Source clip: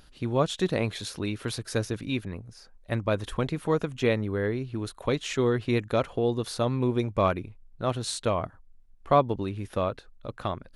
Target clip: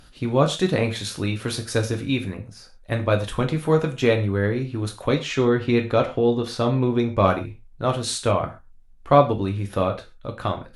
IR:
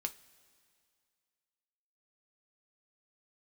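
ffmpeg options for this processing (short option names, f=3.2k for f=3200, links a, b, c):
-filter_complex "[0:a]asettb=1/sr,asplit=3[a][b][c];[a]atrim=end=5.144[d];[b]atrim=start=5.14:end=7.23,asetpts=PTS-STARTPTS,afade=t=in:d=0.004:c=qsin,afade=t=out:st=2.086:d=0.004:c=qsin,equalizer=f=9.9k:t=o:w=1:g=-10.5[e];[c]atrim=start=7.226[f];[d][e]acrossfade=d=0.004:c1=hsin:c2=qsin[g];[g][f]acrossfade=d=0.004:c1=qsin:c2=hsin[h];[1:a]atrim=start_sample=2205,atrim=end_sample=3528,asetrate=25137,aresample=44100[i];[h][i]afir=irnorm=-1:irlink=0,volume=3dB"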